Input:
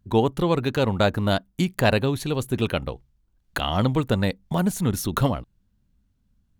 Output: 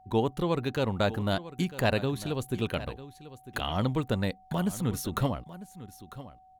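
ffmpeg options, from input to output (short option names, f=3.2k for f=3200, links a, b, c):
-af "aecho=1:1:949:0.168,aeval=exprs='val(0)+0.00398*sin(2*PI*750*n/s)':c=same,volume=-6.5dB"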